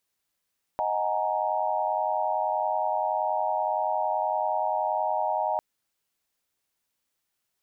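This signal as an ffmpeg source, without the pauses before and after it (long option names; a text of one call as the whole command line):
ffmpeg -f lavfi -i "aevalsrc='0.0335*(sin(2*PI*622.25*t)+sin(2*PI*739.99*t)+sin(2*PI*830.61*t)+sin(2*PI*932.33*t))':duration=4.8:sample_rate=44100" out.wav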